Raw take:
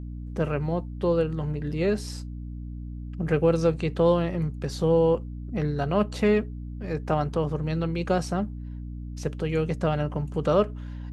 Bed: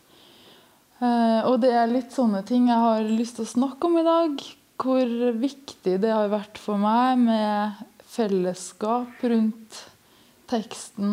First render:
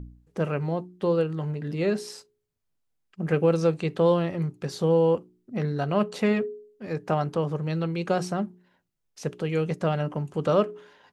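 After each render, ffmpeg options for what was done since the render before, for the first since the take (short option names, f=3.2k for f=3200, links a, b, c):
-af "bandreject=f=60:t=h:w=4,bandreject=f=120:t=h:w=4,bandreject=f=180:t=h:w=4,bandreject=f=240:t=h:w=4,bandreject=f=300:t=h:w=4,bandreject=f=360:t=h:w=4,bandreject=f=420:t=h:w=4"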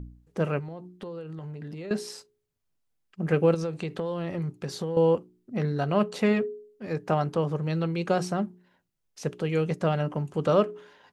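-filter_complex "[0:a]asettb=1/sr,asplit=3[a][b][c];[a]atrim=end=0.594[d];[b]atrim=start=0.59:end=1.91,asetpts=PTS-STARTPTS,afade=t=in:d=0.004:c=qsin,afade=t=out:st=1.316:d=0.004:c=qsin,acompressor=threshold=-34dB:ratio=16:attack=3.2:release=140:knee=1:detection=peak[e];[c]atrim=start=1.906[f];[d][e]acrossfade=d=0.004:c1=hsin:c2=qsin[g];[g][f]acrossfade=d=0.004:c1=qsin:c2=hsin,asettb=1/sr,asplit=3[h][i][j];[h]atrim=end=3.544[k];[i]atrim=start=3.54:end=4.97,asetpts=PTS-STARTPTS,afade=t=in:d=0.004:c=qsin,afade=t=out:st=1.426:d=0.004:c=qsin,acompressor=threshold=-26dB:ratio=10:attack=3.2:release=140:knee=1:detection=peak[l];[j]atrim=start=4.966[m];[k][l]acrossfade=d=0.004:c1=hsin:c2=qsin[n];[n][m]acrossfade=d=0.004:c1=qsin:c2=hsin"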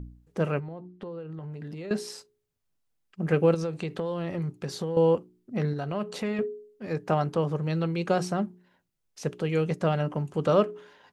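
-filter_complex "[0:a]asettb=1/sr,asplit=3[a][b][c];[a]atrim=end=0.604[d];[b]atrim=start=0.6:end=1.52,asetpts=PTS-STARTPTS,afade=t=in:d=0.004:c=qsin,afade=t=out:st=0.916:d=0.004:c=qsin,aemphasis=mode=reproduction:type=75kf[e];[c]atrim=start=1.516[f];[d][e]acrossfade=d=0.004:c1=hsin:c2=qsin[g];[g][f]acrossfade=d=0.004:c1=qsin:c2=hsin,asettb=1/sr,asplit=3[h][i][j];[h]atrim=end=5.734[k];[i]atrim=start=5.73:end=6.39,asetpts=PTS-STARTPTS,afade=t=in:d=0.004:c=qsin,afade=t=out:st=0.656:d=0.004:c=qsin,acompressor=threshold=-31dB:ratio=2:attack=3.2:release=140:knee=1:detection=peak[l];[j]atrim=start=6.386[m];[k][l]acrossfade=d=0.004:c1=hsin:c2=qsin[n];[n][m]acrossfade=d=0.004:c1=qsin:c2=hsin"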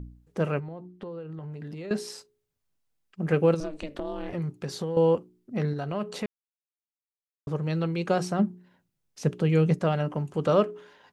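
-filter_complex "[0:a]asettb=1/sr,asplit=3[a][b][c];[a]atrim=end=3.604[d];[b]atrim=start=3.6:end=4.33,asetpts=PTS-STARTPTS,afade=t=in:d=0.004:c=qsin,afade=t=out:st=0.726:d=0.004:c=qsin,aeval=exprs='val(0)*sin(2*PI*150*n/s)':c=same[e];[c]atrim=start=4.326[f];[d][e]acrossfade=d=0.004:c1=hsin:c2=qsin[g];[g][f]acrossfade=d=0.004:c1=qsin:c2=hsin,asettb=1/sr,asplit=3[h][i][j];[h]atrim=end=8.394[k];[i]atrim=start=8.39:end=9.79,asetpts=PTS-STARTPTS,afade=t=in:d=0.004:c=qsin,afade=t=out:st=1.396:d=0.004:c=qsin,equalizer=f=160:w=0.72:g=7[l];[j]atrim=start=9.786[m];[k][l]acrossfade=d=0.004:c1=hsin:c2=qsin[n];[n][m]acrossfade=d=0.004:c1=qsin:c2=hsin,asplit=3[o][p][q];[o]atrim=end=6.26,asetpts=PTS-STARTPTS,afade=t=out:st=6.256:d=0.004:c=hsin[r];[p]atrim=start=6.26:end=7.47,asetpts=PTS-STARTPTS,volume=0[s];[q]atrim=start=7.47,asetpts=PTS-STARTPTS,afade=t=in:d=0.004:c=hsin[t];[r][s][t]concat=n=3:v=0:a=1"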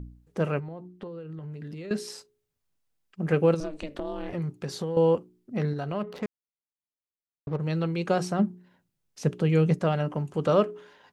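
-filter_complex "[0:a]asettb=1/sr,asplit=3[a][b][c];[a]atrim=end=1.074[d];[b]atrim=start=1.07:end=2.08,asetpts=PTS-STARTPTS,afade=t=in:d=0.004:c=qsin,afade=t=out:st=1.006:d=0.004:c=qsin,equalizer=f=810:w=1.5:g=-6.5[e];[c]atrim=start=2.076[f];[d][e]acrossfade=d=0.004:c1=hsin:c2=qsin[g];[g][f]acrossfade=d=0.004:c1=qsin:c2=hsin,asettb=1/sr,asplit=3[h][i][j];[h]atrim=end=6.024[k];[i]atrim=start=6.02:end=7.6,asetpts=PTS-STARTPTS,afade=t=in:d=0.004:c=qsin,afade=t=out:st=1.576:d=0.004:c=qsin,adynamicsmooth=sensitivity=7:basefreq=660[l];[j]atrim=start=7.596[m];[k][l]acrossfade=d=0.004:c1=hsin:c2=qsin[n];[n][m]acrossfade=d=0.004:c1=qsin:c2=hsin"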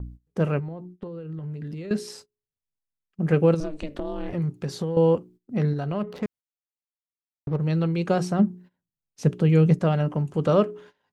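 -af "agate=range=-18dB:threshold=-48dB:ratio=16:detection=peak,lowshelf=f=300:g=6.5"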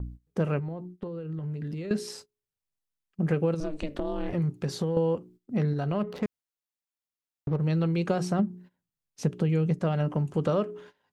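-af "acompressor=threshold=-22dB:ratio=6"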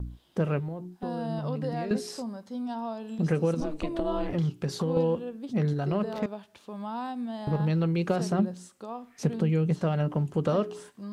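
-filter_complex "[1:a]volume=-14.5dB[a];[0:a][a]amix=inputs=2:normalize=0"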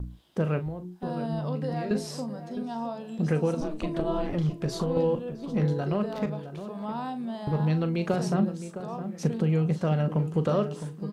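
-filter_complex "[0:a]asplit=2[a][b];[b]adelay=39,volume=-11.5dB[c];[a][c]amix=inputs=2:normalize=0,asplit=2[d][e];[e]adelay=662,lowpass=f=1.4k:p=1,volume=-10.5dB,asplit=2[f][g];[g]adelay=662,lowpass=f=1.4k:p=1,volume=0.3,asplit=2[h][i];[i]adelay=662,lowpass=f=1.4k:p=1,volume=0.3[j];[d][f][h][j]amix=inputs=4:normalize=0"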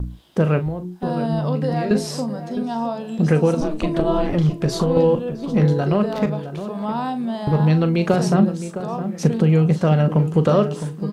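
-af "volume=9dB"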